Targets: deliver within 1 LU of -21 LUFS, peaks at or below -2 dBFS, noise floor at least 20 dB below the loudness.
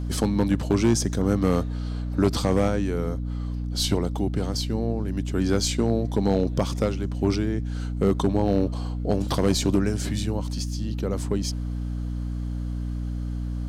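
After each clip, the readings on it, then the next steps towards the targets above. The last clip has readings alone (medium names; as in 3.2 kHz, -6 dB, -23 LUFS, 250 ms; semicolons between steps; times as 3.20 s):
clipped samples 0.4%; clipping level -12.5 dBFS; hum 60 Hz; highest harmonic 300 Hz; hum level -26 dBFS; loudness -25.5 LUFS; peak level -12.5 dBFS; loudness target -21.0 LUFS
-> clip repair -12.5 dBFS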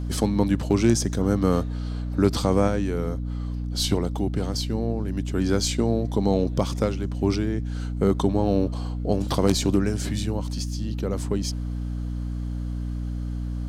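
clipped samples 0.0%; hum 60 Hz; highest harmonic 300 Hz; hum level -26 dBFS
-> hum notches 60/120/180/240/300 Hz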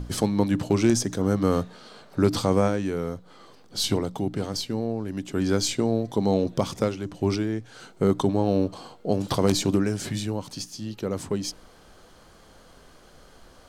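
hum not found; loudness -26.0 LUFS; peak level -4.5 dBFS; loudness target -21.0 LUFS
-> trim +5 dB; peak limiter -2 dBFS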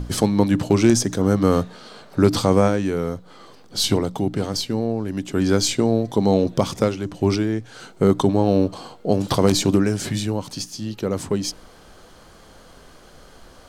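loudness -21.0 LUFS; peak level -2.0 dBFS; noise floor -47 dBFS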